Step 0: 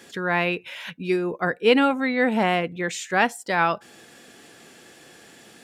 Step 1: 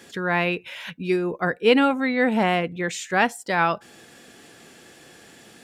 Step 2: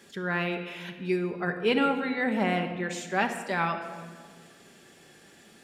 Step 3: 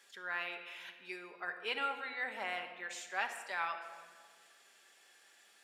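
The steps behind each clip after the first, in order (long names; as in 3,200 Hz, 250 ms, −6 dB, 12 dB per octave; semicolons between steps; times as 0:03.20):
low-shelf EQ 110 Hz +6 dB
rectangular room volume 2,300 cubic metres, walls mixed, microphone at 1.2 metres; level −7.5 dB
high-pass filter 870 Hz 12 dB per octave; level −7 dB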